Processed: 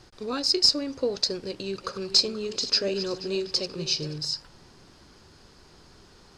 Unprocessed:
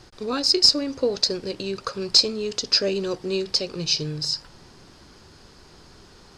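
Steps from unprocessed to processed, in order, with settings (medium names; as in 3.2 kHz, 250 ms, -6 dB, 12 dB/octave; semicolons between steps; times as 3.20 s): 1.44–4.18 s: backward echo that repeats 240 ms, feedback 52%, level -12 dB; trim -4 dB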